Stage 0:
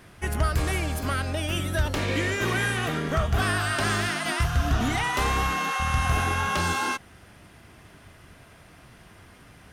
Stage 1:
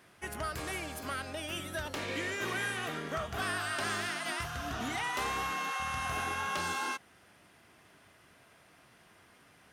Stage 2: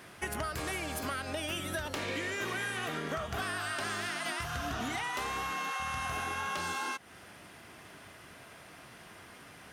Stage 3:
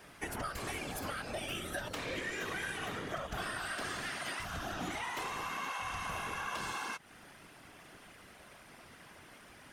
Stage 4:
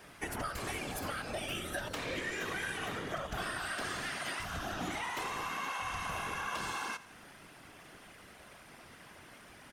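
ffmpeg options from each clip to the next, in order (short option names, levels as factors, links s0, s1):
-af "highpass=f=320:p=1,volume=0.422"
-af "acompressor=threshold=0.00794:ratio=6,volume=2.82"
-af "afftfilt=real='hypot(re,im)*cos(2*PI*random(0))':imag='hypot(re,im)*sin(2*PI*random(1))':win_size=512:overlap=0.75,volume=1.33"
-af "aecho=1:1:85|170|255|340|425:0.141|0.0735|0.0382|0.0199|0.0103,volume=1.12"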